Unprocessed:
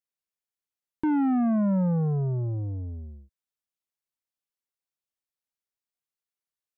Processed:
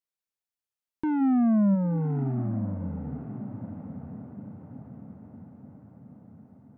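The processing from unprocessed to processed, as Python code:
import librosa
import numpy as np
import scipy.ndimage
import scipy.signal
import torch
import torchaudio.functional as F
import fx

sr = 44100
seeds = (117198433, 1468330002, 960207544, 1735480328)

y = fx.low_shelf(x, sr, hz=210.0, db=9.5, at=(1.2, 1.74), fade=0.02)
y = fx.echo_diffused(y, sr, ms=1028, feedback_pct=55, wet_db=-11.0)
y = y * librosa.db_to_amplitude(-2.5)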